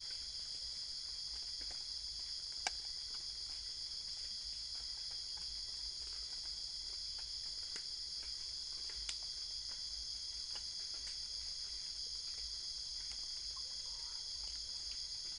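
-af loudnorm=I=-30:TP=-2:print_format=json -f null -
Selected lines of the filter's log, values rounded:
"input_i" : "-42.1",
"input_tp" : "-17.3",
"input_lra" : "0.2",
"input_thresh" : "-52.1",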